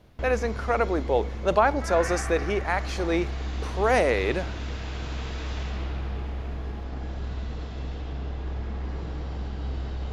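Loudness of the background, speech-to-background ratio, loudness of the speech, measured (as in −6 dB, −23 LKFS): −33.5 LKFS, 8.0 dB, −25.5 LKFS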